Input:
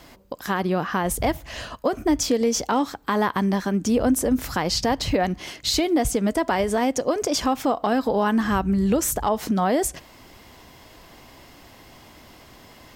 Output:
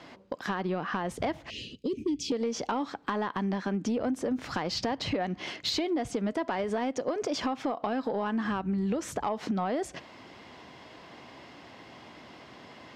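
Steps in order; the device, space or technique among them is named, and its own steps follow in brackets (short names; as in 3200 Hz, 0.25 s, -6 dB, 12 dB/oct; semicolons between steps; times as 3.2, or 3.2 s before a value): 1.5–2.32 elliptic band-stop 410–2600 Hz, stop band 40 dB; AM radio (BPF 140–4000 Hz; compressor 6:1, threshold -26 dBFS, peak gain reduction 10 dB; soft clip -19 dBFS, distortion -22 dB)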